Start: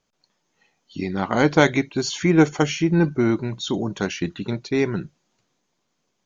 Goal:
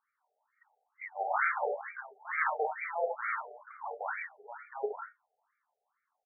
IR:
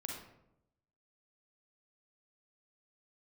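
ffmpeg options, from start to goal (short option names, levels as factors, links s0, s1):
-filter_complex "[0:a]equalizer=f=520:t=o:w=0.32:g=-9.5,acrossover=split=280|4000[s0][s1][s2];[s0]adelay=30[s3];[s2]adelay=80[s4];[s3][s1][s4]amix=inputs=3:normalize=0,aresample=11025,aeval=exprs='0.158*(abs(mod(val(0)/0.158+3,4)-2)-1)':c=same,aresample=44100[s5];[1:a]atrim=start_sample=2205,atrim=end_sample=6174,asetrate=57330,aresample=44100[s6];[s5][s6]afir=irnorm=-1:irlink=0,afftfilt=real='re*between(b*sr/1024,560*pow(1700/560,0.5+0.5*sin(2*PI*2.2*pts/sr))/1.41,560*pow(1700/560,0.5+0.5*sin(2*PI*2.2*pts/sr))*1.41)':imag='im*between(b*sr/1024,560*pow(1700/560,0.5+0.5*sin(2*PI*2.2*pts/sr))/1.41,560*pow(1700/560,0.5+0.5*sin(2*PI*2.2*pts/sr))*1.41)':win_size=1024:overlap=0.75,volume=1.78"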